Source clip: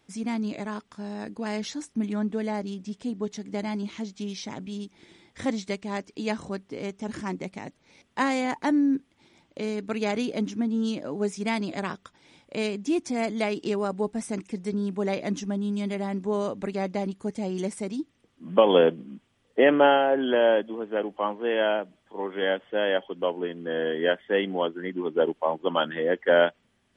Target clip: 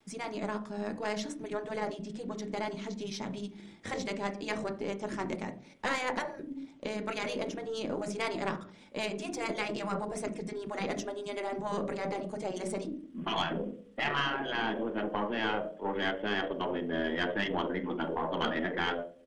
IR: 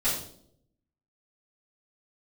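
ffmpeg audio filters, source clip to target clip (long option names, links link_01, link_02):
-filter_complex "[0:a]bandreject=frequency=50:width_type=h:width=6,bandreject=frequency=100:width_type=h:width=6,bandreject=frequency=150:width_type=h:width=6,asplit=2[link_01][link_02];[1:a]atrim=start_sample=2205,lowpass=2100[link_03];[link_02][link_03]afir=irnorm=-1:irlink=0,volume=-12.5dB[link_04];[link_01][link_04]amix=inputs=2:normalize=0,afftfilt=real='re*lt(hypot(re,im),0.316)':imag='im*lt(hypot(re,im),0.316)':win_size=1024:overlap=0.75,atempo=1.4,aeval=exprs='(tanh(8.91*val(0)+0.5)-tanh(0.5))/8.91':channel_layout=same"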